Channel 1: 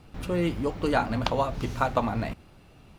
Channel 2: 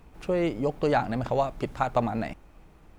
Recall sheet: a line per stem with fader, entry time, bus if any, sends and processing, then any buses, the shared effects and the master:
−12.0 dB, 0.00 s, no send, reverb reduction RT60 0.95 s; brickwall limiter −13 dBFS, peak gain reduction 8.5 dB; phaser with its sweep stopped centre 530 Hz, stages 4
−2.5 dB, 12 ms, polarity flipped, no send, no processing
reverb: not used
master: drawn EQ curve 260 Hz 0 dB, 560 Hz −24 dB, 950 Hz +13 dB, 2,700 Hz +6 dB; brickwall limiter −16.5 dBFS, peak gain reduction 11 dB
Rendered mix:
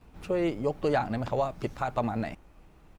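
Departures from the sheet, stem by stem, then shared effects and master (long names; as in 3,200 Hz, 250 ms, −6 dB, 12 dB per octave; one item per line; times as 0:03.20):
stem 1: missing phaser with its sweep stopped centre 530 Hz, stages 4
master: missing drawn EQ curve 260 Hz 0 dB, 560 Hz −24 dB, 950 Hz +13 dB, 2,700 Hz +6 dB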